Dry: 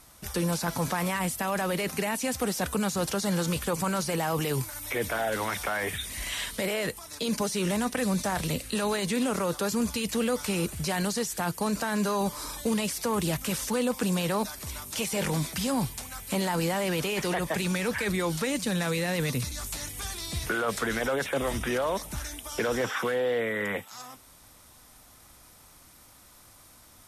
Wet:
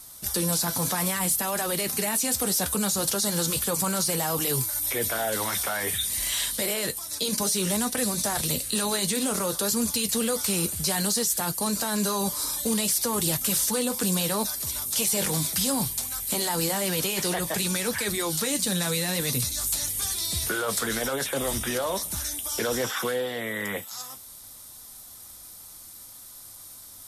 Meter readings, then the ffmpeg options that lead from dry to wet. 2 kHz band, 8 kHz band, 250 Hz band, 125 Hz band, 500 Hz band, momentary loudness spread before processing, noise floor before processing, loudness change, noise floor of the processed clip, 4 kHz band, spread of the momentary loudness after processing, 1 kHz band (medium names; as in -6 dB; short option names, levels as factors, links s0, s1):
-0.5 dB, +10.0 dB, -0.5 dB, -1.0 dB, -1.0 dB, 6 LU, -54 dBFS, +4.0 dB, -45 dBFS, +6.0 dB, 14 LU, -0.5 dB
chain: -af "aexciter=amount=1.9:drive=8.3:freq=3500,flanger=delay=7.9:depth=3:regen=-57:speed=0.61:shape=sinusoidal,volume=1.5"